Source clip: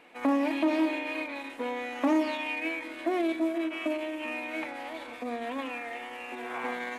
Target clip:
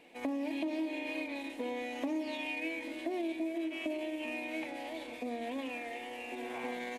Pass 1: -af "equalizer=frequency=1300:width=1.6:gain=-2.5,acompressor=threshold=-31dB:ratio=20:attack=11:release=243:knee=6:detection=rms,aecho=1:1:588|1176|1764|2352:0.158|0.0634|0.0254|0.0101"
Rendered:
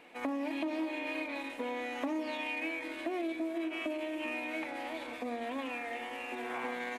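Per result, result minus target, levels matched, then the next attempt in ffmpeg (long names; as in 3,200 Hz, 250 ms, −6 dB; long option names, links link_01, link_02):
echo 255 ms early; 1,000 Hz band +2.5 dB
-af "equalizer=frequency=1300:width=1.6:gain=-2.5,acompressor=threshold=-31dB:ratio=20:attack=11:release=243:knee=6:detection=rms,aecho=1:1:843|1686|2529|3372:0.158|0.0634|0.0254|0.0101"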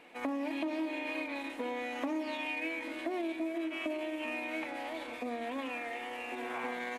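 1,000 Hz band +2.5 dB
-af "equalizer=frequency=1300:width=1.6:gain=-14.5,acompressor=threshold=-31dB:ratio=20:attack=11:release=243:knee=6:detection=rms,aecho=1:1:843|1686|2529|3372:0.158|0.0634|0.0254|0.0101"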